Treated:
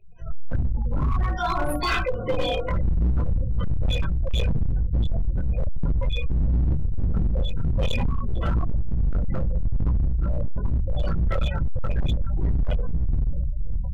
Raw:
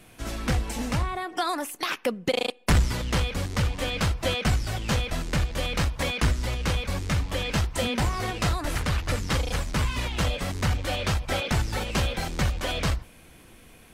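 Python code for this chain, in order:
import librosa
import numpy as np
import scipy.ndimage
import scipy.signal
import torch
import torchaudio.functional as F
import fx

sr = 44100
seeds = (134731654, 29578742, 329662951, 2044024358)

p1 = fx.octave_divider(x, sr, octaves=1, level_db=-2.0)
p2 = fx.high_shelf(p1, sr, hz=11000.0, db=7.5)
p3 = fx.hum_notches(p2, sr, base_hz=50, count=5)
p4 = p3 + fx.echo_diffused(p3, sr, ms=475, feedback_pct=75, wet_db=-10, dry=0)
p5 = fx.room_shoebox(p4, sr, seeds[0], volume_m3=920.0, walls='furnished', distance_m=4.9)
p6 = fx.spec_gate(p5, sr, threshold_db=-15, keep='strong')
p7 = fx.rider(p6, sr, range_db=3, speed_s=0.5)
p8 = p6 + F.gain(torch.from_numpy(p7), 3.0).numpy()
p9 = fx.peak_eq(p8, sr, hz=210.0, db=-5.5, octaves=2.8)
p10 = fx.volume_shaper(p9, sr, bpm=89, per_beat=1, depth_db=-5, release_ms=242.0, shape='slow start')
p11 = fx.chorus_voices(p10, sr, voices=4, hz=0.5, base_ms=19, depth_ms=2.4, mix_pct=45)
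p12 = np.clip(p11, -10.0 ** (-13.0 / 20.0), 10.0 ** (-13.0 / 20.0))
y = F.gain(torch.from_numpy(p12), -5.0).numpy()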